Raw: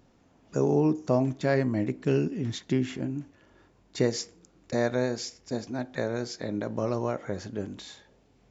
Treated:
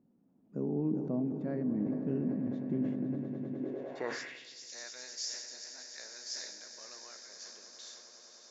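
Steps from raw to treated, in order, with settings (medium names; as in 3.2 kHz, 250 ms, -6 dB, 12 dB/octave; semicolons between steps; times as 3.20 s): peaking EQ 81 Hz -15 dB 1.1 oct; echo with a slow build-up 102 ms, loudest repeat 8, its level -14.5 dB; band-pass sweep 200 Hz -> 5.8 kHz, 3.52–4.62 s; dynamic bell 1.7 kHz, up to +4 dB, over -59 dBFS, Q 1.2; decay stretcher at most 48 dB/s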